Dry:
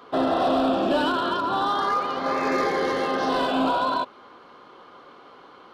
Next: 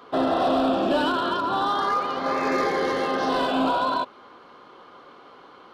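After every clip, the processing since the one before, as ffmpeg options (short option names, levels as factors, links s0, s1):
-af anull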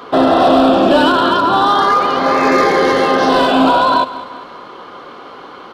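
-filter_complex "[0:a]asplit=2[s0][s1];[s1]alimiter=limit=0.0794:level=0:latency=1,volume=0.891[s2];[s0][s2]amix=inputs=2:normalize=0,aecho=1:1:199|398|597|796:0.158|0.0761|0.0365|0.0175,volume=2.66"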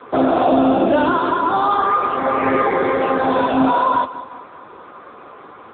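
-af "bandreject=f=3100:w=5.2,volume=0.708" -ar 8000 -c:a libopencore_amrnb -b:a 6700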